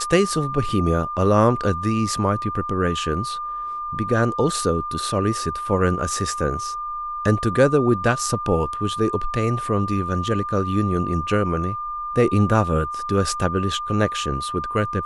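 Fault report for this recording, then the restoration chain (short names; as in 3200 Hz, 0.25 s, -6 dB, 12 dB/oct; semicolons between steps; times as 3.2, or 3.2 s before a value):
tone 1200 Hz -26 dBFS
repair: notch 1200 Hz, Q 30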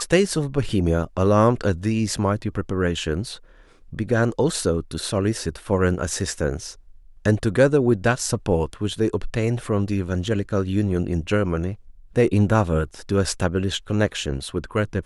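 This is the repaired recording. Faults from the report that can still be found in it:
none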